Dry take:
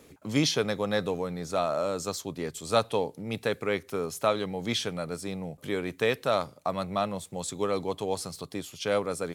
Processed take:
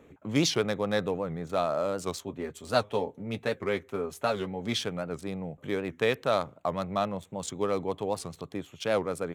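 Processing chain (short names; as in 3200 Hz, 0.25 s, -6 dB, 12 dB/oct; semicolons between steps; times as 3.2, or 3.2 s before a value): Wiener smoothing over 9 samples; 2.2–4.76 notch comb 160 Hz; record warp 78 rpm, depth 160 cents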